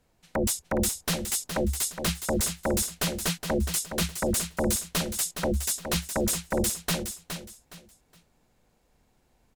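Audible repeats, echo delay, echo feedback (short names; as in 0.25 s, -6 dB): 3, 0.416 s, 27%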